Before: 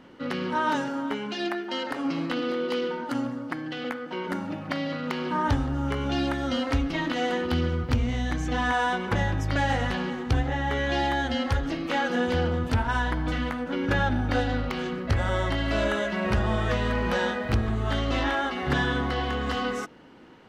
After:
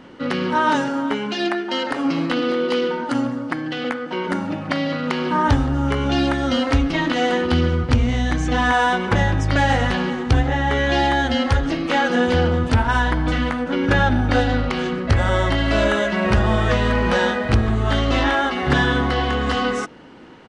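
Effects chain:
downsampling to 22,050 Hz
level +7.5 dB

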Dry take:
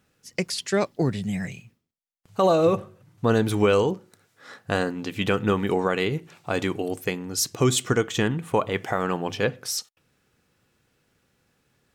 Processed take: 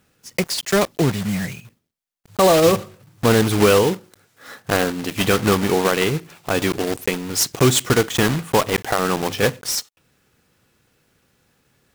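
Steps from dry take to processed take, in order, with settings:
one scale factor per block 3 bits
level +5 dB

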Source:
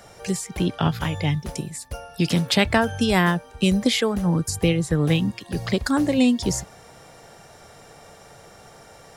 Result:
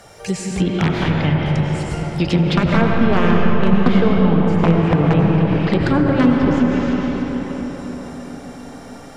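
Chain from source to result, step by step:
wrap-around overflow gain 10 dB
convolution reverb RT60 5.4 s, pre-delay 55 ms, DRR −2 dB
treble cut that deepens with the level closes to 1,500 Hz, closed at −13 dBFS
level +3 dB

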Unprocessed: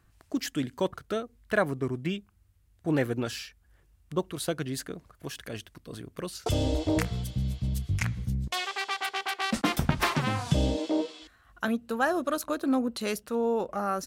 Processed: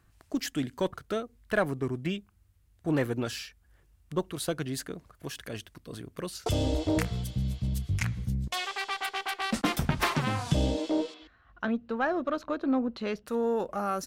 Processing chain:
one-sided soft clipper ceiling −13.5 dBFS
0:11.14–0:13.26: high-frequency loss of the air 220 metres

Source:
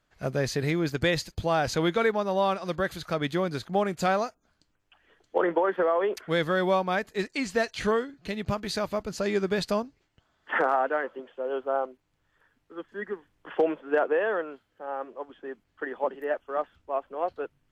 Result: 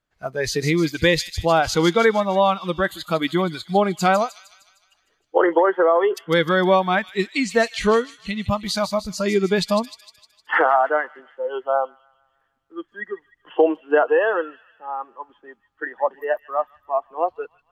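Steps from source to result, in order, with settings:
noise reduction from a noise print of the clip's start 15 dB
delay with a high-pass on its return 153 ms, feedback 53%, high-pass 3,800 Hz, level −7 dB
level +8 dB

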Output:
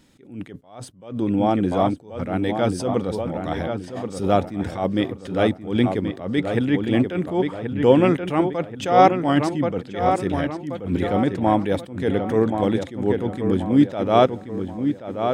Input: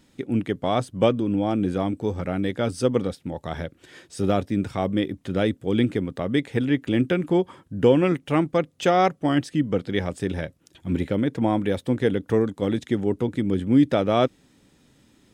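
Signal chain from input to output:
dynamic equaliser 820 Hz, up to +6 dB, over −34 dBFS, Q 1.3
feedback echo with a low-pass in the loop 1,080 ms, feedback 44%, low-pass 3,300 Hz, level −7 dB
level that may rise only so fast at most 120 dB per second
level +2 dB

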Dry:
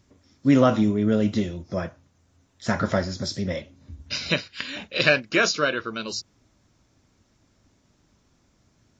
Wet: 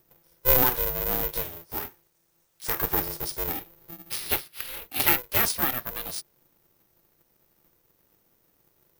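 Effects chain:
0:00.62–0:02.82: spectral tilt +2 dB per octave
bad sample-rate conversion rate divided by 3×, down filtered, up zero stuff
ring modulator with a square carrier 250 Hz
level −7.5 dB

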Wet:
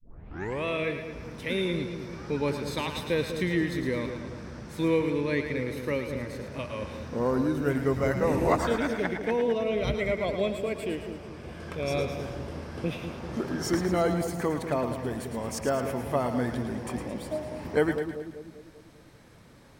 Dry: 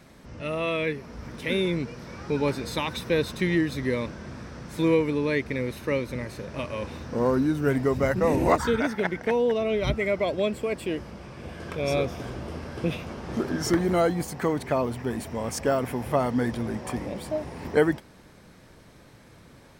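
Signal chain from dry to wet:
turntable start at the beginning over 0.65 s
echo with a time of its own for lows and highs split 600 Hz, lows 196 ms, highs 110 ms, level −7.5 dB
level −3.5 dB

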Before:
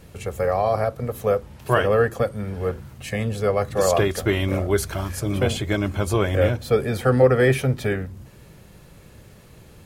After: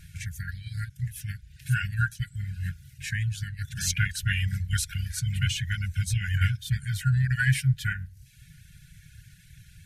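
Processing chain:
reverb reduction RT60 0.78 s
formants moved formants −2 semitones
linear-phase brick-wall band-stop 180–1,400 Hz

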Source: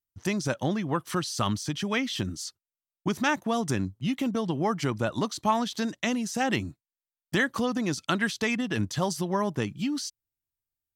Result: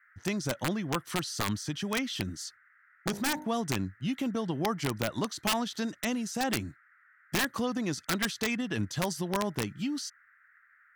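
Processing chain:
wrap-around overflow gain 17 dB
0:02.45–0:03.46: hum removal 50.6 Hz, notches 20
noise in a band 1,300–2,000 Hz −59 dBFS
level −3.5 dB

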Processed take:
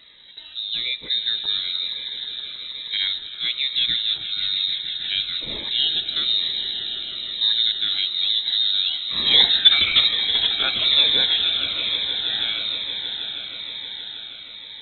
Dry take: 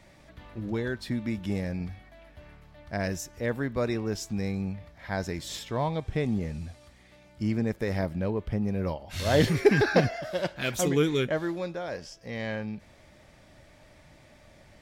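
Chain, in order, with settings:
echo that builds up and dies away 158 ms, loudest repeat 5, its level −13.5 dB
voice inversion scrambler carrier 3,900 Hz
phaser whose notches keep moving one way falling 1.1 Hz
level +6.5 dB

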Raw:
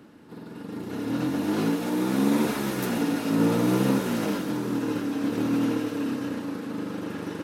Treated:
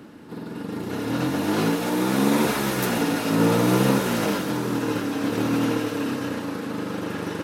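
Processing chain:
dynamic equaliser 260 Hz, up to −6 dB, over −37 dBFS, Q 1.3
level +6.5 dB

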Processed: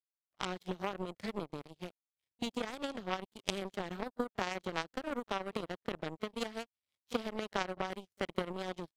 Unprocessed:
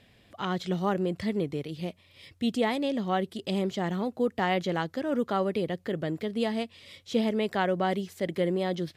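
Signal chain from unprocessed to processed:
echo ahead of the sound 33 ms −12.5 dB
downward compressor 16 to 1, threshold −27 dBFS, peak gain reduction 8 dB
power curve on the samples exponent 3
level +8.5 dB

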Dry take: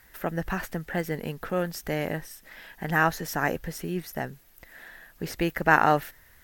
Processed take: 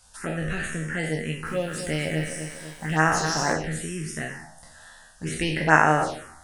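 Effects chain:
peak hold with a decay on every bin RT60 0.86 s
high-shelf EQ 3,600 Hz +12 dB
tuned comb filter 78 Hz, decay 0.25 s, harmonics all, mix 80%
phaser swept by the level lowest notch 310 Hz, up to 4,100 Hz, full sweep at −21.5 dBFS
downsampling to 22,050 Hz
0:01.22–0:03.53: feedback echo at a low word length 247 ms, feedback 55%, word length 9 bits, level −8.5 dB
level +6.5 dB

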